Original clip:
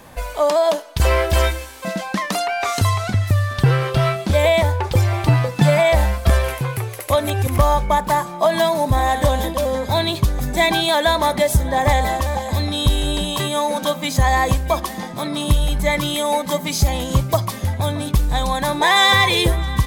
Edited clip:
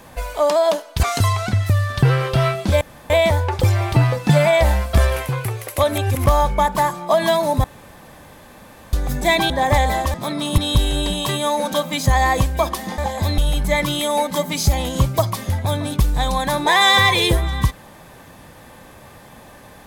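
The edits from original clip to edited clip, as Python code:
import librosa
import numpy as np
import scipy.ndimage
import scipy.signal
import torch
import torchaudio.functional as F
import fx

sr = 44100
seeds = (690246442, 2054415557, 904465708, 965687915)

y = fx.edit(x, sr, fx.cut(start_s=1.03, length_s=1.61),
    fx.insert_room_tone(at_s=4.42, length_s=0.29),
    fx.room_tone_fill(start_s=8.96, length_s=1.29),
    fx.cut(start_s=10.82, length_s=0.83),
    fx.swap(start_s=12.29, length_s=0.4, other_s=15.09, other_length_s=0.44), tone=tone)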